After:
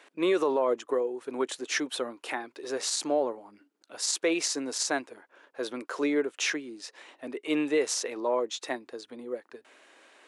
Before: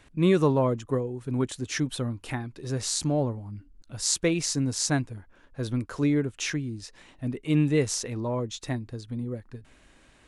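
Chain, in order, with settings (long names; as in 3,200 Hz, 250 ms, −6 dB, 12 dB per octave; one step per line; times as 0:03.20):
high-pass filter 370 Hz 24 dB per octave
high-shelf EQ 5,200 Hz −6.5 dB
brickwall limiter −21.5 dBFS, peak gain reduction 7.5 dB
level +4.5 dB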